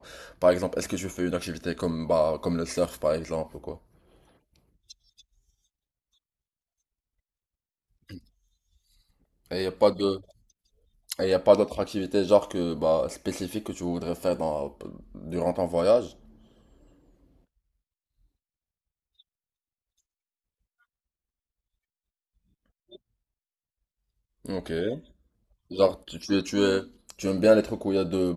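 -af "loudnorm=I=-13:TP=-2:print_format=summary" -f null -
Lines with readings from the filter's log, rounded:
Input Integrated:    -26.1 LUFS
Input True Peak:      -5.4 dBTP
Input LRA:             7.0 LU
Input Threshold:     -37.8 LUFS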